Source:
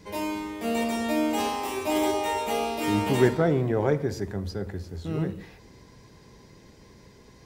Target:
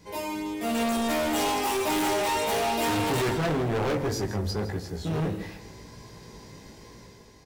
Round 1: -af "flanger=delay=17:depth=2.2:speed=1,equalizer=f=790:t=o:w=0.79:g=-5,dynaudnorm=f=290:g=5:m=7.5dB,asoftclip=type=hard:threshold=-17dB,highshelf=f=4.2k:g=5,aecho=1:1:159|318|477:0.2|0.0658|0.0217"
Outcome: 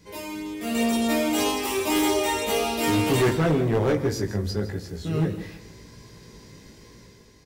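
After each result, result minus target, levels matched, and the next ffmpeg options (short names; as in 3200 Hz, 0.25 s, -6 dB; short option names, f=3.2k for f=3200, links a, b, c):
1000 Hz band -4.0 dB; hard clip: distortion -6 dB
-af "flanger=delay=17:depth=2.2:speed=1,equalizer=f=790:t=o:w=0.79:g=3,dynaudnorm=f=290:g=5:m=7.5dB,asoftclip=type=hard:threshold=-17dB,highshelf=f=4.2k:g=5,aecho=1:1:159|318|477:0.2|0.0658|0.0217"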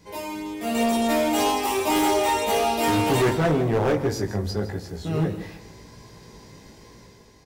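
hard clip: distortion -5 dB
-af "flanger=delay=17:depth=2.2:speed=1,equalizer=f=790:t=o:w=0.79:g=3,dynaudnorm=f=290:g=5:m=7.5dB,asoftclip=type=hard:threshold=-24.5dB,highshelf=f=4.2k:g=5,aecho=1:1:159|318|477:0.2|0.0658|0.0217"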